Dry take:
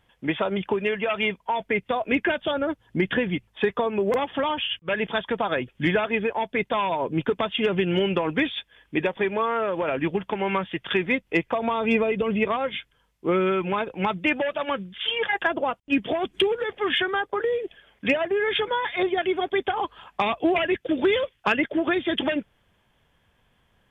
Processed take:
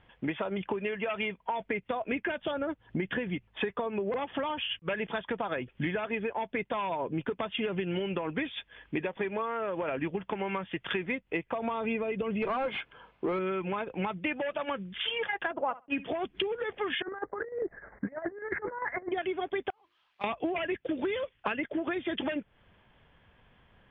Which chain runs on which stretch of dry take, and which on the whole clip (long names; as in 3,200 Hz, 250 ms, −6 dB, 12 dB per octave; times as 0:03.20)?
0:12.42–0:13.39: notch filter 1,900 Hz, Q 7.7 + mid-hump overdrive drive 24 dB, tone 1,000 Hz, clips at −11.5 dBFS
0:15.51–0:16.09: parametric band 1,000 Hz +8 dB 1.8 octaves + flutter between parallel walls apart 11.5 metres, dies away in 0.23 s + multiband upward and downward expander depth 100%
0:17.02–0:19.12: Butterworth low-pass 2,000 Hz 96 dB per octave + compressor whose output falls as the input rises −31 dBFS, ratio −0.5 + square-wave tremolo 10 Hz, depth 60%, duty 65%
0:19.70–0:20.24: spike at every zero crossing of −19 dBFS + noise gate −19 dBFS, range −37 dB + mains-hum notches 50/100/150/200/250/300/350 Hz
whole clip: low-pass filter 3,200 Hz 24 dB per octave; downward compressor 4 to 1, threshold −35 dBFS; level +3.5 dB